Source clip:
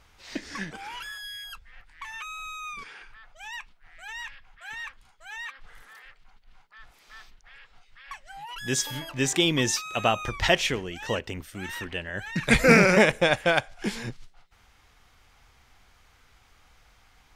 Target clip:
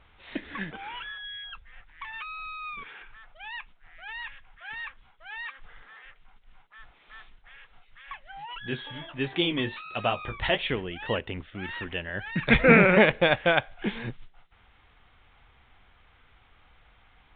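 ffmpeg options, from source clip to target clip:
-filter_complex "[0:a]asettb=1/sr,asplit=3[s0][s1][s2];[s0]atrim=end=8.584[s3];[s1]atrim=start=8.58:end=10.7,asetpts=PTS-STARTPTS,afade=t=in:d=0.004:c=qsin,afade=t=out:st=2.116:d=0.004:c=qsin,flanger=delay=9.2:depth=9.7:regen=-34:speed=1.4:shape=sinusoidal[s4];[s2]atrim=start=10.696[s5];[s3][s4]acrossfade=d=0.004:c1=hsin:c2=qsin[s6];[s6][s5]acrossfade=d=0.004:c1=qsin:c2=hsin" -ar 8000 -c:a pcm_mulaw

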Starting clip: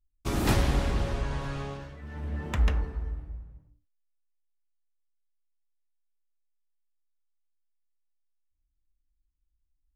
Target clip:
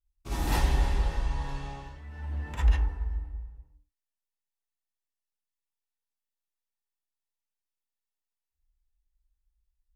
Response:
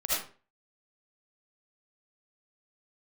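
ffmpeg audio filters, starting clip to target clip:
-filter_complex "[1:a]atrim=start_sample=2205,afade=t=out:st=0.16:d=0.01,atrim=end_sample=7497,asetrate=61740,aresample=44100[s0];[0:a][s0]afir=irnorm=-1:irlink=0,volume=0.447"

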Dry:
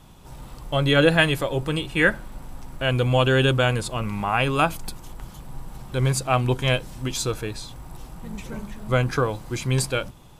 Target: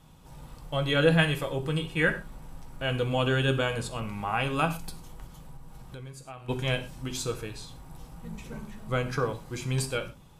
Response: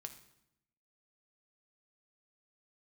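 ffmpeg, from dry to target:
-filter_complex "[1:a]atrim=start_sample=2205,afade=t=out:st=0.21:d=0.01,atrim=end_sample=9702,asetrate=52920,aresample=44100[s0];[0:a][s0]afir=irnorm=-1:irlink=0,asplit=3[s1][s2][s3];[s1]afade=t=out:st=5.26:d=0.02[s4];[s2]acompressor=threshold=0.01:ratio=10,afade=t=in:st=5.26:d=0.02,afade=t=out:st=6.48:d=0.02[s5];[s3]afade=t=in:st=6.48:d=0.02[s6];[s4][s5][s6]amix=inputs=3:normalize=0"

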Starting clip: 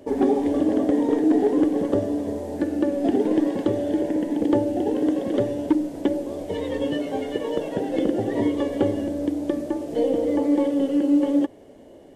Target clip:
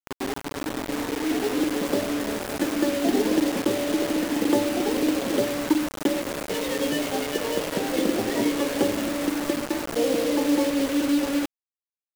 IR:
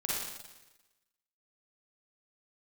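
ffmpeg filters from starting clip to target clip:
-af "highpass=f=150:w=0.5412,highpass=f=150:w=1.3066,equalizer=f=390:t=o:w=2.6:g=-6,dynaudnorm=f=460:g=7:m=4.47,acrusher=bits=3:mix=0:aa=0.000001,volume=0.473"

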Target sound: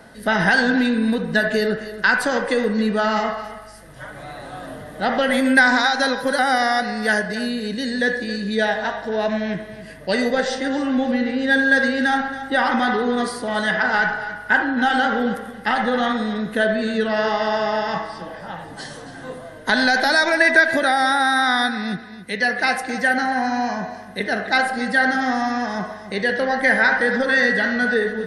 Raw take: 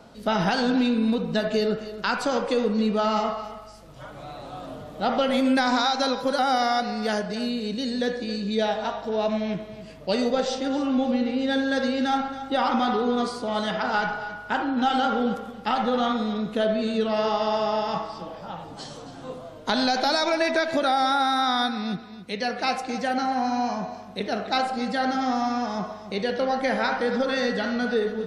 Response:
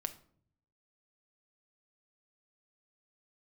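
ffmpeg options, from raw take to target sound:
-af "superequalizer=11b=3.98:16b=3.55,volume=1.41"

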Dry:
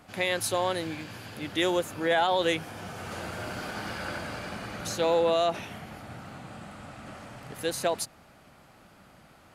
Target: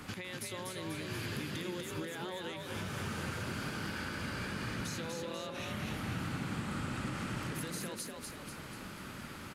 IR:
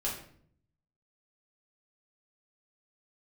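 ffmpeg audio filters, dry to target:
-filter_complex "[0:a]equalizer=f=680:w=2.8:g=-14,acompressor=threshold=0.00794:ratio=6,alimiter=level_in=4.47:limit=0.0631:level=0:latency=1:release=212,volume=0.224,acrossover=split=180[s0][s1];[s1]acompressor=threshold=0.00355:ratio=6[s2];[s0][s2]amix=inputs=2:normalize=0,asplit=8[s3][s4][s5][s6][s7][s8][s9][s10];[s4]adelay=244,afreqshift=40,volume=0.668[s11];[s5]adelay=488,afreqshift=80,volume=0.347[s12];[s6]adelay=732,afreqshift=120,volume=0.18[s13];[s7]adelay=976,afreqshift=160,volume=0.0944[s14];[s8]adelay=1220,afreqshift=200,volume=0.049[s15];[s9]adelay=1464,afreqshift=240,volume=0.0254[s16];[s10]adelay=1708,afreqshift=280,volume=0.0132[s17];[s3][s11][s12][s13][s14][s15][s16][s17]amix=inputs=8:normalize=0,volume=2.82"

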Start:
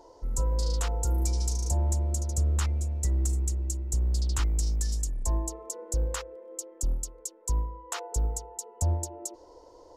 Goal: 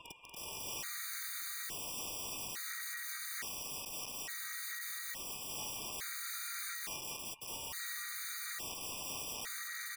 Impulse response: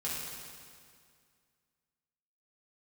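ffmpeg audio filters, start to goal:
-filter_complex "[0:a]highpass=f=240:w=0.5412,highpass=f=240:w=1.3066,aemphasis=mode=production:type=50kf,afftdn=nr=22:nf=-42,acrossover=split=3400[s0][s1];[s1]acompressor=threshold=0.0398:ratio=4:attack=1:release=60[s2];[s0][s2]amix=inputs=2:normalize=0,alimiter=level_in=1.41:limit=0.0631:level=0:latency=1:release=51,volume=0.708,areverse,acompressor=threshold=0.00501:ratio=8,areverse,aeval=exprs='max(val(0),0)':c=same,asplit=2[s3][s4];[s4]aecho=0:1:43|173|236|274|281|606:0.178|0.133|0.501|0.335|0.2|0.631[s5];[s3][s5]amix=inputs=2:normalize=0,aeval=exprs='val(0)*sin(2*PI*1900*n/s)':c=same,aeval=exprs='(mod(355*val(0)+1,2)-1)/355':c=same,afftfilt=real='re*gt(sin(2*PI*0.58*pts/sr)*(1-2*mod(floor(b*sr/1024/1200),2)),0)':imag='im*gt(sin(2*PI*0.58*pts/sr)*(1-2*mod(floor(b*sr/1024/1200),2)),0)':win_size=1024:overlap=0.75,volume=7.08"

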